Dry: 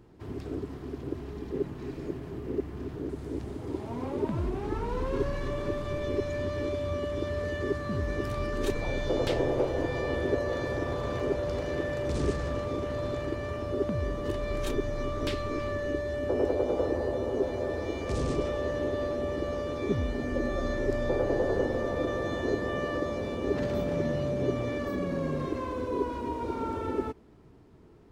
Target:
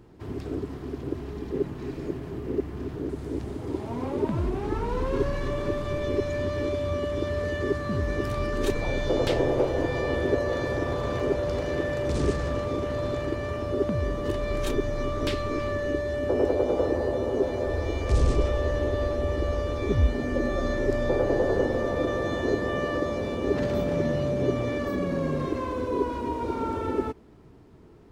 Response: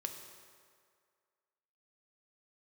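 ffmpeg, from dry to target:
-filter_complex "[0:a]asplit=3[a][b][c];[a]afade=t=out:st=17.65:d=0.02[d];[b]asubboost=boost=4.5:cutoff=77,afade=t=in:st=17.65:d=0.02,afade=t=out:st=20.06:d=0.02[e];[c]afade=t=in:st=20.06:d=0.02[f];[d][e][f]amix=inputs=3:normalize=0,volume=3.5dB"

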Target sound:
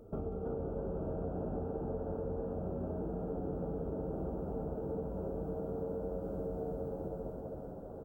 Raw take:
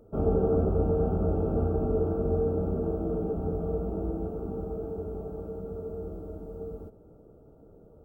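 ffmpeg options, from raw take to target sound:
-filter_complex "[0:a]asplit=2[a][b];[b]aecho=0:1:190|456|828.4|1350|2080:0.631|0.398|0.251|0.158|0.1[c];[a][c]amix=inputs=2:normalize=0,acompressor=threshold=-37dB:ratio=12,asplit=2[d][e];[e]asplit=6[f][g][h][i][j][k];[f]adelay=325,afreqshift=91,volume=-5dB[l];[g]adelay=650,afreqshift=182,volume=-11.9dB[m];[h]adelay=975,afreqshift=273,volume=-18.9dB[n];[i]adelay=1300,afreqshift=364,volume=-25.8dB[o];[j]adelay=1625,afreqshift=455,volume=-32.7dB[p];[k]adelay=1950,afreqshift=546,volume=-39.7dB[q];[l][m][n][o][p][q]amix=inputs=6:normalize=0[r];[d][r]amix=inputs=2:normalize=0,volume=1dB"

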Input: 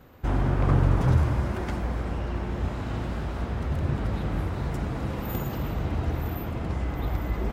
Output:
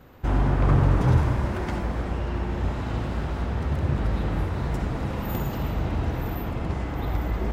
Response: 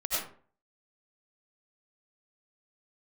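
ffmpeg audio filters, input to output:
-filter_complex "[0:a]asplit=2[a][b];[1:a]atrim=start_sample=2205,asetrate=61740,aresample=44100,lowpass=8.8k[c];[b][c]afir=irnorm=-1:irlink=0,volume=-9.5dB[d];[a][d]amix=inputs=2:normalize=0"

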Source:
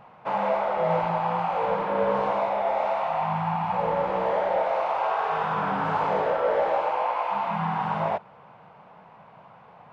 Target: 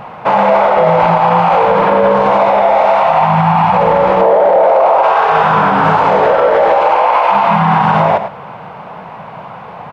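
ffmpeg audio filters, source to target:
-filter_complex "[0:a]asettb=1/sr,asplit=3[a][b][c];[a]atrim=end=4.214[d];[b]atrim=start=4.21:end=5.03,asetpts=PTS-STARTPTS,afade=t=in:d=0.004:c=qsin,afade=t=out:st=0.816:d=0.004:c=qsin,equalizer=f=510:t=o:w=2.2:g=12[e];[c]atrim=start=5.026[f];[d][e]acrossfade=d=0.004:c1=hsin:c2=qsin[g];[g][f]acrossfade=d=0.004:c1=qsin:c2=hsin,aecho=1:1:105:0.188,alimiter=level_in=21.5dB:limit=-1dB:release=50:level=0:latency=1,volume=-1dB"

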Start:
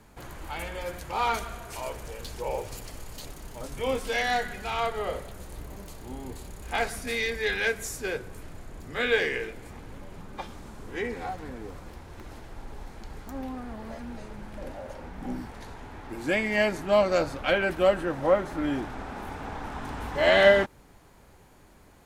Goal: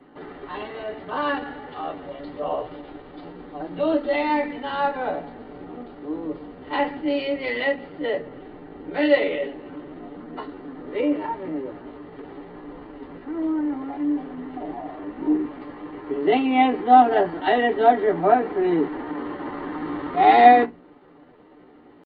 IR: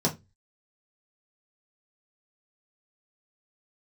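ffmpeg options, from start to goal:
-filter_complex "[0:a]aresample=8000,aresample=44100[a];[1:a]atrim=start_sample=2205,asetrate=66150,aresample=44100[b];[a][b]afir=irnorm=-1:irlink=0,asetrate=53981,aresample=44100,atempo=0.816958,volume=-7dB"

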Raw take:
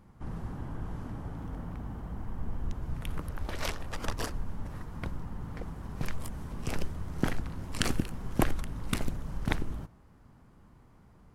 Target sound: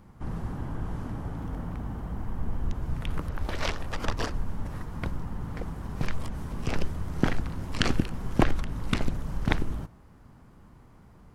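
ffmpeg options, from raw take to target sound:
-filter_complex "[0:a]acrossover=split=6300[a][b];[b]acompressor=threshold=-58dB:ratio=4:attack=1:release=60[c];[a][c]amix=inputs=2:normalize=0,volume=4.5dB"

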